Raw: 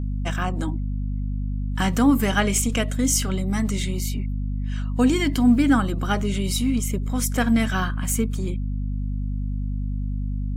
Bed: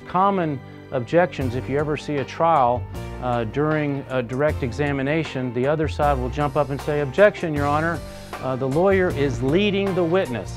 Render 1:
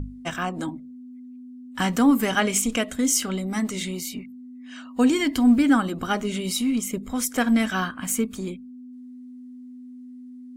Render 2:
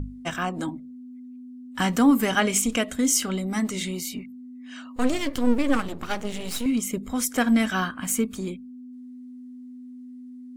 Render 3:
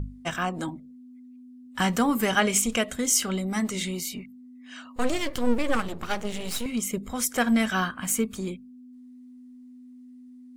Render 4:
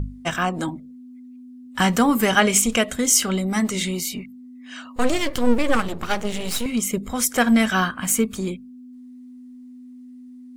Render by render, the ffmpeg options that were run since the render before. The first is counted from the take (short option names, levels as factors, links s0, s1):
-af "bandreject=f=50:t=h:w=6,bandreject=f=100:t=h:w=6,bandreject=f=150:t=h:w=6,bandreject=f=200:t=h:w=6"
-filter_complex "[0:a]asettb=1/sr,asplit=3[s0][s1][s2];[s0]atrim=end=4.964[s3];[s1]atrim=start=4.96:end=6.66,asetpts=PTS-STARTPTS,afade=t=in:d=0.004:c=qsin,afade=t=out:st=1.696:d=0.004:c=qsin,aeval=exprs='max(val(0),0)':c=same[s4];[s2]atrim=start=6.656[s5];[s3][s4]acrossfade=d=0.004:c1=hsin:c2=qsin[s6];[s6][s5]acrossfade=d=0.004:c1=qsin:c2=hsin"
-af "equalizer=f=270:w=7.4:g=-13"
-af "volume=1.88"